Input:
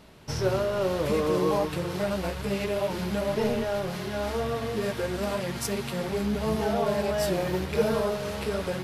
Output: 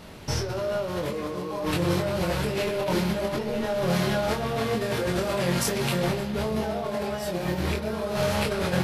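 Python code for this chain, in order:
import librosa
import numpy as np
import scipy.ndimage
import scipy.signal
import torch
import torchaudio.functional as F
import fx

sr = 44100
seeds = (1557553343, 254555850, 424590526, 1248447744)

y = fx.over_compress(x, sr, threshold_db=-32.0, ratio=-1.0)
y = fx.doubler(y, sr, ms=23.0, db=-3.5)
y = fx.echo_bbd(y, sr, ms=129, stages=4096, feedback_pct=73, wet_db=-13.5)
y = F.gain(torch.from_numpy(y), 3.0).numpy()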